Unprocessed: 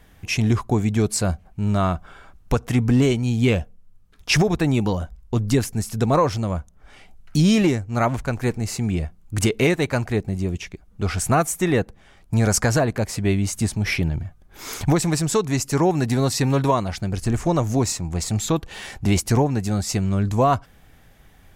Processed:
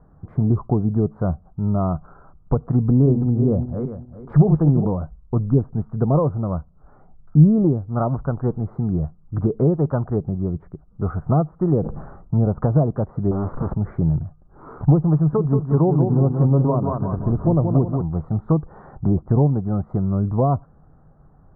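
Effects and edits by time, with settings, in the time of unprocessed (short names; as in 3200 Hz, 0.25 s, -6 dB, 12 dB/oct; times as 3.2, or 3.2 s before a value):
2.86–4.87 regenerating reverse delay 0.199 s, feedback 47%, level -7 dB
11.81–12.44 sustainer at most 44 dB/s
13.31–13.74 infinite clipping
15.15–18.02 feedback echo 0.18 s, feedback 45%, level -6 dB
whole clip: elliptic low-pass 1300 Hz, stop band 50 dB; treble ducked by the level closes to 690 Hz, closed at -15.5 dBFS; bell 150 Hz +9.5 dB 0.37 oct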